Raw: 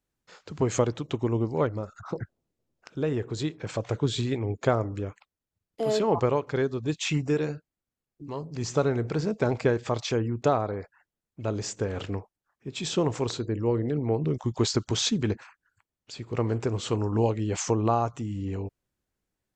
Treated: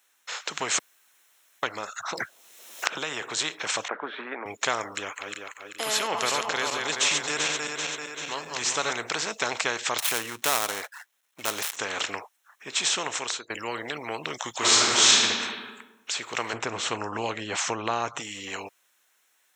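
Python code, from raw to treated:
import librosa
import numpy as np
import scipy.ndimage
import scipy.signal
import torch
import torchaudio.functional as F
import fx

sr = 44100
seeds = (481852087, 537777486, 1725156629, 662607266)

y = fx.band_squash(x, sr, depth_pct=100, at=(2.17, 3.22))
y = fx.ellip_bandpass(y, sr, low_hz=230.0, high_hz=1600.0, order=3, stop_db=60, at=(3.88, 4.46))
y = fx.reverse_delay_fb(y, sr, ms=194, feedback_pct=62, wet_db=-6.0, at=(4.96, 8.93))
y = fx.dead_time(y, sr, dead_ms=0.082, at=(9.98, 11.77))
y = fx.reverb_throw(y, sr, start_s=14.58, length_s=0.56, rt60_s=1.1, drr_db=-11.5)
y = fx.tilt_eq(y, sr, slope=-4.0, at=(16.53, 18.2))
y = fx.edit(y, sr, fx.room_tone_fill(start_s=0.79, length_s=0.84),
    fx.fade_out_to(start_s=12.84, length_s=0.66, floor_db=-21.0), tone=tone)
y = scipy.signal.sosfilt(scipy.signal.butter(2, 1200.0, 'highpass', fs=sr, output='sos'), y)
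y = fx.notch(y, sr, hz=4700.0, q=5.6)
y = fx.spectral_comp(y, sr, ratio=2.0)
y = y * 10.0 ** (3.0 / 20.0)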